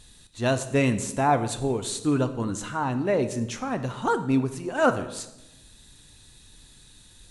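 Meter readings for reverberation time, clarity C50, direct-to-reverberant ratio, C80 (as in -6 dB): 0.95 s, 12.0 dB, 9.0 dB, 14.5 dB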